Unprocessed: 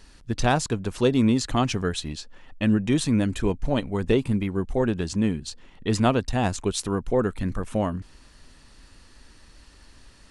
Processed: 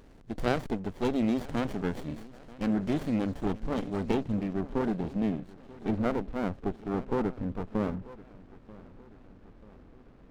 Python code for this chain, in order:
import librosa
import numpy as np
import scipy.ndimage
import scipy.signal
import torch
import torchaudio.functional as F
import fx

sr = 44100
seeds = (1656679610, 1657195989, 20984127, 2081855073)

y = fx.bin_compress(x, sr, power=0.6)
y = fx.lowpass(y, sr, hz=fx.steps((0.0, 6400.0), (4.15, 2800.0), (5.91, 1400.0)), slope=12)
y = fx.echo_feedback(y, sr, ms=936, feedback_pct=53, wet_db=-13.0)
y = fx.noise_reduce_blind(y, sr, reduce_db=9)
y = fx.running_max(y, sr, window=33)
y = y * 10.0 ** (-7.5 / 20.0)